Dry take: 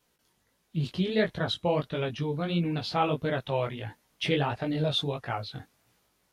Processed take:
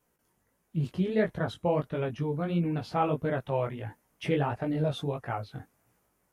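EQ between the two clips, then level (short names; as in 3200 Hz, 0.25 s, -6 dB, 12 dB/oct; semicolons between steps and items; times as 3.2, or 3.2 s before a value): bell 3900 Hz -14 dB 1.2 oct; 0.0 dB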